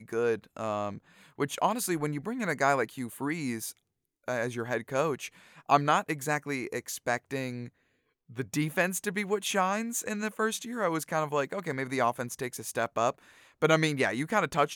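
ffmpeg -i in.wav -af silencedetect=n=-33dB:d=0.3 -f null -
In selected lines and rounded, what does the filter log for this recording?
silence_start: 0.95
silence_end: 1.39 | silence_duration: 0.43
silence_start: 3.70
silence_end: 4.28 | silence_duration: 0.58
silence_start: 5.27
silence_end: 5.69 | silence_duration: 0.42
silence_start: 7.66
silence_end: 8.38 | silence_duration: 0.72
silence_start: 13.10
silence_end: 13.62 | silence_duration: 0.52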